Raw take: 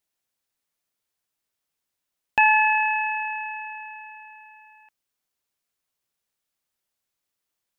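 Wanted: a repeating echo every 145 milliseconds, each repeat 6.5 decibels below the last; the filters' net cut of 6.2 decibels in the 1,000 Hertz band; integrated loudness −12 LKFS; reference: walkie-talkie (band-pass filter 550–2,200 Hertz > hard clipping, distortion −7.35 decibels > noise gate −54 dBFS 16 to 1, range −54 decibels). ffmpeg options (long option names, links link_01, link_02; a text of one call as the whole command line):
ffmpeg -i in.wav -af "highpass=550,lowpass=2200,equalizer=frequency=1000:width_type=o:gain=-6.5,aecho=1:1:145|290|435|580|725|870:0.473|0.222|0.105|0.0491|0.0231|0.0109,asoftclip=type=hard:threshold=-22.5dB,agate=range=-54dB:threshold=-54dB:ratio=16,volume=14.5dB" out.wav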